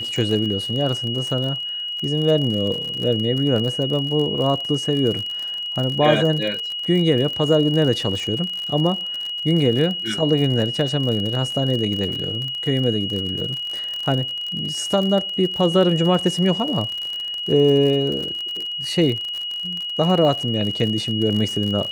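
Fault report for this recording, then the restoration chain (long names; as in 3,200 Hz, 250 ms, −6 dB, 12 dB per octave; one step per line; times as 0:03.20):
surface crackle 47 per second −25 dBFS
whistle 2,900 Hz −25 dBFS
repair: click removal
notch filter 2,900 Hz, Q 30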